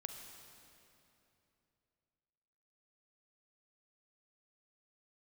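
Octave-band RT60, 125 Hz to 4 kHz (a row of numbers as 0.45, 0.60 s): 3.5, 3.2, 3.1, 2.8, 2.6, 2.4 s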